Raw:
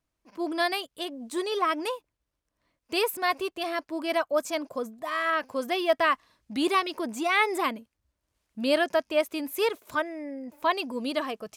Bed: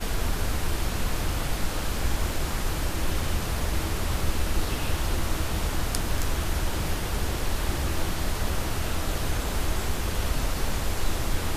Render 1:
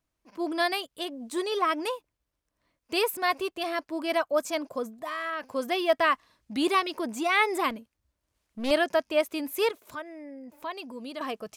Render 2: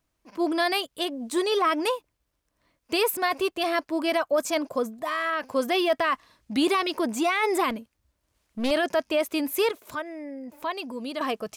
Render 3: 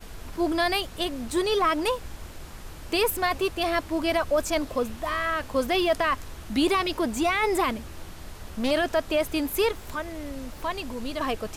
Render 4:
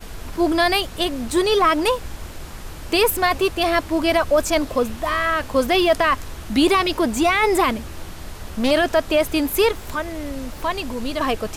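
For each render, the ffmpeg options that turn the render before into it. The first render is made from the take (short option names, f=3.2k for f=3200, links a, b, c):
-filter_complex "[0:a]asettb=1/sr,asplit=3[a][b][c];[a]atrim=end=4.854[d];[b]atrim=start=4.85:end=5.52,asetpts=PTS-STARTPTS,afade=t=in:d=0.004:c=qsin,afade=t=out:st=0.666:d=0.004:c=qsin,acompressor=threshold=-30dB:ratio=3:attack=3.2:release=140:knee=1:detection=peak[e];[c]atrim=start=5.516[f];[d][e]acrossfade=d=0.004:c1=hsin:c2=qsin[g];[g][f]acrossfade=d=0.004:c1=qsin:c2=hsin,asettb=1/sr,asplit=3[h][i][j];[h]atrim=end=7.704[k];[i]atrim=start=7.7:end=8.71,asetpts=PTS-STARTPTS,afade=t=in:d=0.004:c=qsin,afade=t=out:st=1.006:d=0.004:c=qsin,aeval=exprs='clip(val(0),-1,0.015)':c=same[l];[j]atrim=start=8.706[m];[k][l]acrossfade=d=0.004:c1=hsin:c2=qsin[n];[n][m]acrossfade=d=0.004:c1=qsin:c2=hsin,asettb=1/sr,asplit=3[o][p][q];[o]atrim=end=9.714[r];[p]atrim=start=9.71:end=11.21,asetpts=PTS-STARTPTS,afade=t=in:d=0.004:c=qsin,afade=t=out:st=1.496:d=0.004:c=qsin,acompressor=threshold=-50dB:ratio=1.5:attack=3.2:release=140:knee=1:detection=peak[s];[q]atrim=start=11.206[t];[r][s]acrossfade=d=0.004:c1=hsin:c2=qsin[u];[u][t]acrossfade=d=0.004:c1=qsin:c2=hsin"
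-af "acontrast=35,alimiter=limit=-15dB:level=0:latency=1:release=17"
-filter_complex "[1:a]volume=-13.5dB[a];[0:a][a]amix=inputs=2:normalize=0"
-af "volume=6.5dB"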